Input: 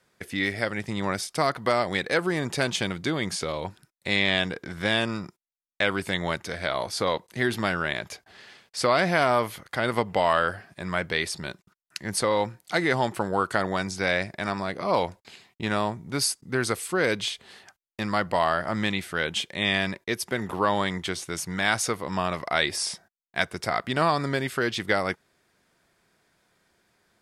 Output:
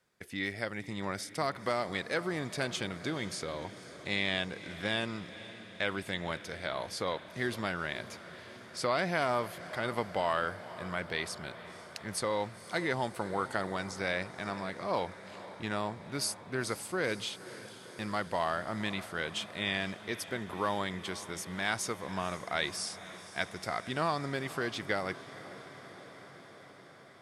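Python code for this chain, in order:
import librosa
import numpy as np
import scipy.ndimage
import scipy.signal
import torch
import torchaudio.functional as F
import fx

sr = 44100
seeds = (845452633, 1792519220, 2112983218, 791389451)

y = fx.echo_diffused(x, sr, ms=502, feedback_pct=74, wet_db=-15.5)
y = F.gain(torch.from_numpy(y), -8.5).numpy()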